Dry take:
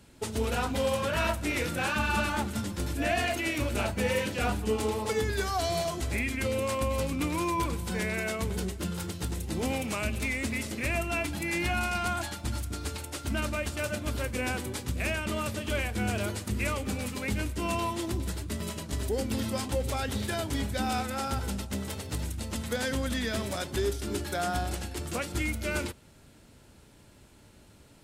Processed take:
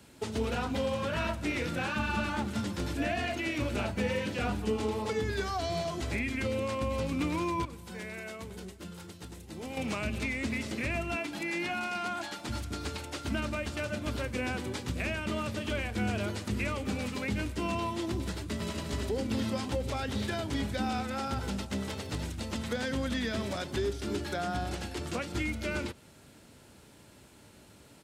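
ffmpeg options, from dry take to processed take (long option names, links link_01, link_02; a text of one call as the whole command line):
ffmpeg -i in.wav -filter_complex "[0:a]asettb=1/sr,asplit=3[link_01][link_02][link_03];[link_01]atrim=end=11.164[link_04];[link_02]atrim=start=11.16:end=12.49,asetpts=PTS-STARTPTS,afade=type=in:duration=0.004:curve=qsin,afade=type=out:start_time=1.326:duration=0.004:curve=qsin,highpass=240[link_05];[link_03]atrim=start=12.486[link_06];[link_04][link_05]acrossfade=duration=0.004:curve1=hsin:curve2=qsin[link_07];[link_07][link_06]acrossfade=duration=0.004:curve1=qsin:curve2=hsin,asplit=2[link_08][link_09];[link_09]afade=type=in:start_time=18.35:duration=0.01,afade=type=out:start_time=18.78:duration=0.01,aecho=0:1:240|480|720|960|1200|1440|1680|1920|2160|2400|2640:0.473151|0.331206|0.231844|0.162291|0.113604|0.0795225|0.0556658|0.038966|0.0272762|0.0190934|0.0133654[link_10];[link_08][link_10]amix=inputs=2:normalize=0,asplit=3[link_11][link_12][link_13];[link_11]atrim=end=7.652[link_14];[link_12]atrim=start=7.648:end=9.772,asetpts=PTS-STARTPTS,volume=-11dB[link_15];[link_13]atrim=start=9.768[link_16];[link_14][link_15]acrossfade=duration=0.004:curve1=hsin:curve2=hsin[link_17];[link_17][link_16]acrossfade=duration=0.004:curve1=hsin:curve2=hsin,acrossover=split=6500[link_18][link_19];[link_19]acompressor=threshold=-56dB:ratio=4:attack=1:release=60[link_20];[link_18][link_20]amix=inputs=2:normalize=0,highpass=frequency=120:poles=1,acrossover=split=290[link_21][link_22];[link_22]acompressor=threshold=-38dB:ratio=2[link_23];[link_21][link_23]amix=inputs=2:normalize=0,volume=2dB" out.wav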